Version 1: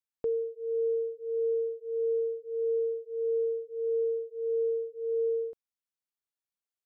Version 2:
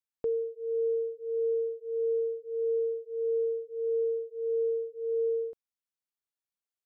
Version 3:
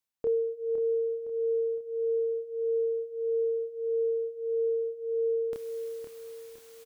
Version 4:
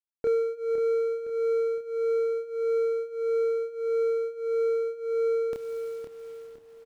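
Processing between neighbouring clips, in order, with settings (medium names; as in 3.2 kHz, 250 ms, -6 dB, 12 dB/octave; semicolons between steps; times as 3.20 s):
no audible change
reverse; upward compressor, threshold -33 dBFS; reverse; doubling 28 ms -2.5 dB; feedback delay 512 ms, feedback 42%, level -8 dB
median filter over 41 samples; trim +3.5 dB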